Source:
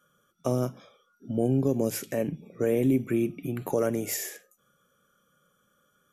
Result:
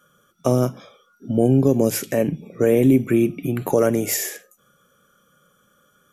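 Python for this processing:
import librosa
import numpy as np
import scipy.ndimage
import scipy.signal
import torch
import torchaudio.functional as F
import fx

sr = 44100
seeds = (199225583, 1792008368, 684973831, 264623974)

y = F.gain(torch.from_numpy(x), 8.5).numpy()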